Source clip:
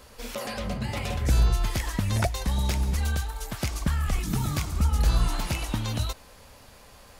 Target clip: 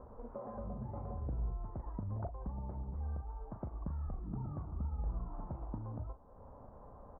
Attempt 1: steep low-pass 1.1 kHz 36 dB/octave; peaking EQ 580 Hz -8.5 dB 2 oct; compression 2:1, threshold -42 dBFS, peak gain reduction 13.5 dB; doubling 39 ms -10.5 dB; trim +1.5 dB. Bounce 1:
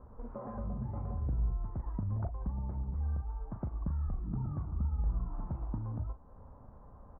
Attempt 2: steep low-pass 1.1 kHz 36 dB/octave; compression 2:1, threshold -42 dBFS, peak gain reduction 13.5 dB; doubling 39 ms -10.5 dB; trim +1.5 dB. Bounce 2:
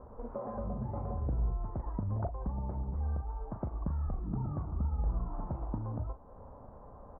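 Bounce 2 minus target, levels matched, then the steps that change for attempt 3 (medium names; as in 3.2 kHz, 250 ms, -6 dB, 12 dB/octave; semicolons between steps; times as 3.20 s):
compression: peak gain reduction -5.5 dB
change: compression 2:1, threshold -53.5 dBFS, peak gain reduction 19.5 dB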